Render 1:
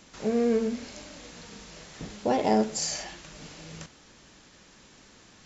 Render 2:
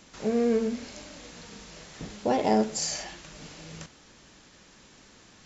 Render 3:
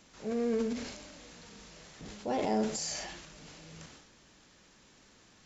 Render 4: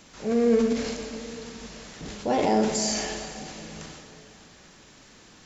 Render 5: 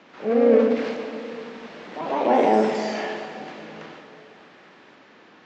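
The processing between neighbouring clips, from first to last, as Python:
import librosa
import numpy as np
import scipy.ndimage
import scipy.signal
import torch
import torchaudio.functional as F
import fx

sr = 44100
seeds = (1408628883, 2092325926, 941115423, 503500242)

y1 = x
y2 = fx.transient(y1, sr, attack_db=-4, sustain_db=8)
y2 = y2 * librosa.db_to_amplitude(-6.5)
y3 = fx.rev_plate(y2, sr, seeds[0], rt60_s=3.3, hf_ratio=0.75, predelay_ms=0, drr_db=6.5)
y3 = y3 * librosa.db_to_amplitude(8.0)
y4 = fx.bandpass_edges(y3, sr, low_hz=280.0, high_hz=2600.0)
y4 = fx.echo_pitch(y4, sr, ms=85, semitones=2, count=2, db_per_echo=-6.0)
y4 = fx.air_absorb(y4, sr, metres=92.0)
y4 = y4 * librosa.db_to_amplitude(5.5)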